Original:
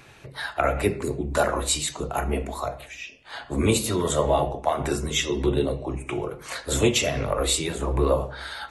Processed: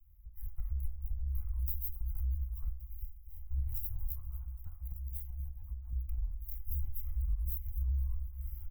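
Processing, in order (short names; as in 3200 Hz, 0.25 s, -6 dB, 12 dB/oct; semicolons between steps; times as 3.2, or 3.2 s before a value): minimum comb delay 0.96 ms; inverse Chebyshev band-stop 150–8800 Hz, stop band 50 dB; compressor 5:1, threshold -44 dBFS, peak gain reduction 15 dB; 4.12–5.93 low shelf 69 Hz -10 dB; on a send: feedback echo 0.245 s, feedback 58%, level -16.5 dB; on the sum: AGC gain up to 6 dB; 2.87–3.43 bell 1400 Hz -11.5 dB 0.86 oct; shaped vibrato saw down 4.3 Hz, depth 100 cents; gain +6.5 dB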